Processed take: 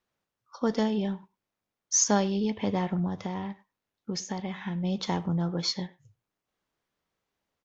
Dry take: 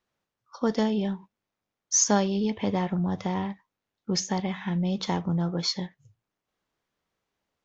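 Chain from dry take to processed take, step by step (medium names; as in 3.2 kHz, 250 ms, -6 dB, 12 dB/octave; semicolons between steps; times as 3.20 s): 3.07–4.84 s: compression, threshold -28 dBFS, peak gain reduction 6 dB; speakerphone echo 100 ms, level -20 dB; trim -1.5 dB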